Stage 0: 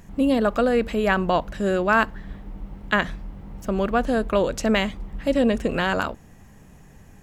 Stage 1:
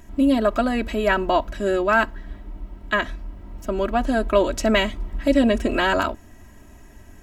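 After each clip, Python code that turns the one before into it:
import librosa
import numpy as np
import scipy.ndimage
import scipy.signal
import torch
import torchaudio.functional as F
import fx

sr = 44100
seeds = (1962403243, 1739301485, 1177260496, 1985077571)

y = x + 0.84 * np.pad(x, (int(3.1 * sr / 1000.0), 0))[:len(x)]
y = fx.rider(y, sr, range_db=10, speed_s=2.0)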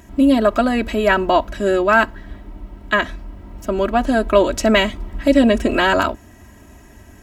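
y = scipy.signal.sosfilt(scipy.signal.butter(2, 45.0, 'highpass', fs=sr, output='sos'), x)
y = F.gain(torch.from_numpy(y), 4.5).numpy()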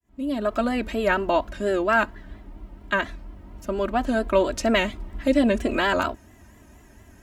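y = fx.fade_in_head(x, sr, length_s=0.66)
y = fx.vibrato(y, sr, rate_hz=4.3, depth_cents=85.0)
y = F.gain(torch.from_numpy(y), -6.5).numpy()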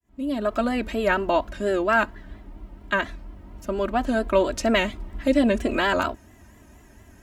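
y = x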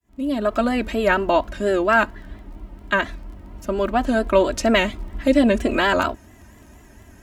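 y = fx.dmg_crackle(x, sr, seeds[0], per_s=16.0, level_db=-44.0)
y = F.gain(torch.from_numpy(y), 3.5).numpy()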